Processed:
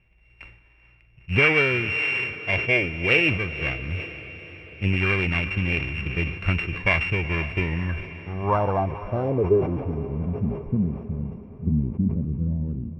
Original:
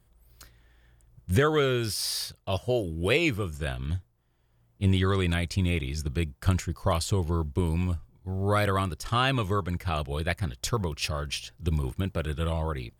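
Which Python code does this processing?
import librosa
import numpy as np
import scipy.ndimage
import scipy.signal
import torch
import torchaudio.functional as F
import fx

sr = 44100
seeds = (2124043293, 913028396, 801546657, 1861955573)

p1 = np.r_[np.sort(x[:len(x) // 16 * 16].reshape(-1, 16), axis=1).ravel(), x[len(x) // 16 * 16:]]
p2 = fx.filter_sweep_lowpass(p1, sr, from_hz=2300.0, to_hz=220.0, start_s=7.58, end_s=10.17, q=7.3)
p3 = p2 + fx.echo_diffused(p2, sr, ms=482, feedback_pct=58, wet_db=-14.5, dry=0)
y = fx.sustainer(p3, sr, db_per_s=81.0)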